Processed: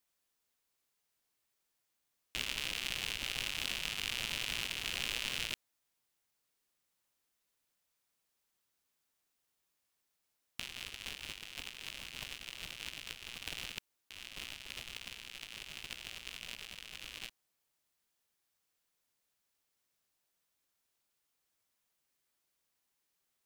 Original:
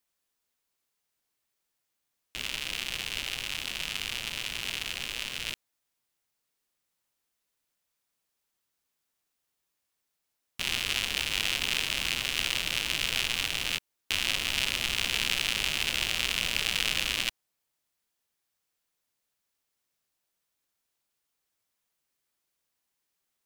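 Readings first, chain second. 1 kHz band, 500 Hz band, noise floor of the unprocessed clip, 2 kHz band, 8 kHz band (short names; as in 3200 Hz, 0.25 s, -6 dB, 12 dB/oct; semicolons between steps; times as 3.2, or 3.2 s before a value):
-10.5 dB, -10.0 dB, -82 dBFS, -11.0 dB, -11.0 dB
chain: negative-ratio compressor -36 dBFS, ratio -0.5; gain -6 dB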